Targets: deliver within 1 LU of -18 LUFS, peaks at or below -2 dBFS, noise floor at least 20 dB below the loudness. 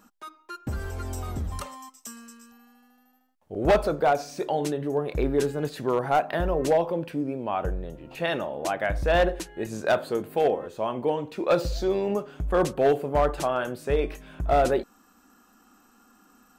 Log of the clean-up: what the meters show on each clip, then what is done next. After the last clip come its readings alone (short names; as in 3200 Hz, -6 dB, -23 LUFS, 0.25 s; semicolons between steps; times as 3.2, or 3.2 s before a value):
clipped 0.5%; flat tops at -14.5 dBFS; loudness -26.5 LUFS; peak -14.5 dBFS; loudness target -18.0 LUFS
-> clip repair -14.5 dBFS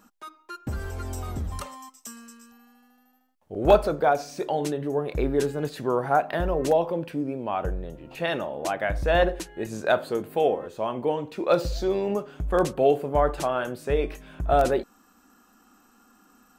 clipped 0.0%; loudness -26.0 LUFS; peak -5.5 dBFS; loudness target -18.0 LUFS
-> gain +8 dB; limiter -2 dBFS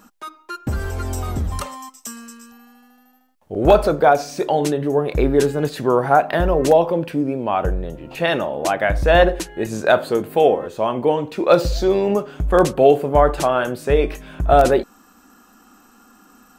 loudness -18.5 LUFS; peak -2.0 dBFS; noise floor -53 dBFS